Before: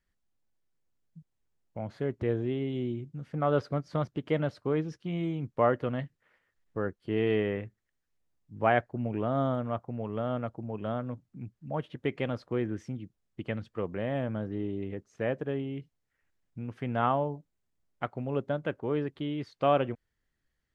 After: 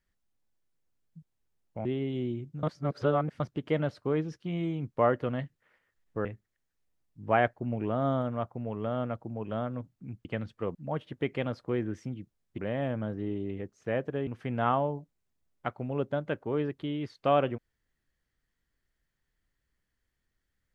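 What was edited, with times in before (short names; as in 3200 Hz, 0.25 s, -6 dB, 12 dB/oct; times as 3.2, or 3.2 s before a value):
1.85–2.45 cut
3.23–4 reverse
6.85–7.58 cut
13.41–13.91 move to 11.58
15.6–16.64 cut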